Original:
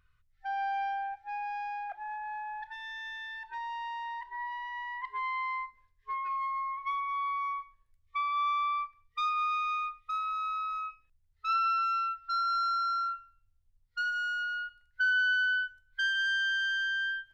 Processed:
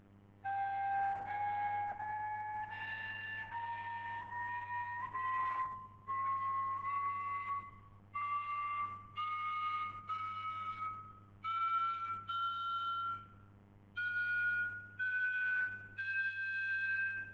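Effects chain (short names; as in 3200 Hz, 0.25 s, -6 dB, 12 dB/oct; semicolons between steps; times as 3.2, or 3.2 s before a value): nonlinear frequency compression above 1700 Hz 1.5:1; 7.49–8.22 steep low-pass 5500 Hz 72 dB/oct; buzz 100 Hz, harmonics 34, -57 dBFS -7 dB/oct; limiter -29.5 dBFS, peak gain reduction 8 dB; on a send: darkening echo 0.101 s, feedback 55%, low-pass 2200 Hz, level -8.5 dB; on the sum: gain -3 dB; Opus 10 kbps 48000 Hz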